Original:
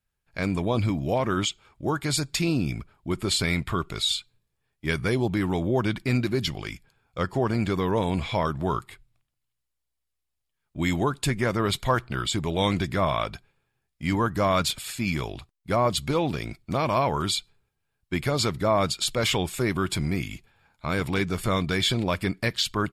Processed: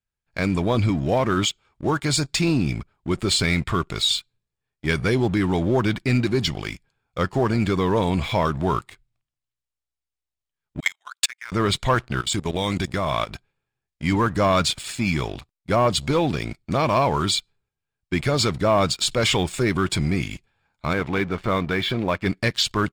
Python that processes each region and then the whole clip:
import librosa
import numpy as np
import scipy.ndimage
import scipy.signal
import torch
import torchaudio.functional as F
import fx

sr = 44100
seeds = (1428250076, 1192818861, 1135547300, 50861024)

y = fx.chain(x, sr, fx.highpass(hz=1300.0, slope=24),
    fx.transient(attack_db=11, sustain_db=-10),
    fx.level_steps(step_db=20), at=(10.8, 11.52))
y = fx.chain(y, sr, fx.high_shelf(hz=7400.0, db=11.0),
    fx.level_steps(step_db=14), at=(12.21, 13.31))
y = fx.chain(y, sr, fx.lowpass(hz=2500.0, slope=12),
    fx.low_shelf(hz=180.0, db=-7.0), at=(20.93, 22.26))
y = scipy.signal.sosfilt(scipy.signal.butter(4, 9300.0, 'lowpass', fs=sr, output='sos'), y)
y = fx.leveller(y, sr, passes=2)
y = y * 10.0 ** (-3.0 / 20.0)